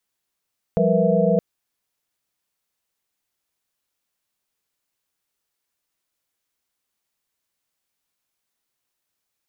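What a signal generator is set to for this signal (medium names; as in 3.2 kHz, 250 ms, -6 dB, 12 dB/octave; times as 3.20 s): chord F3/G3/A#4/B4/E5 sine, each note -21.5 dBFS 0.62 s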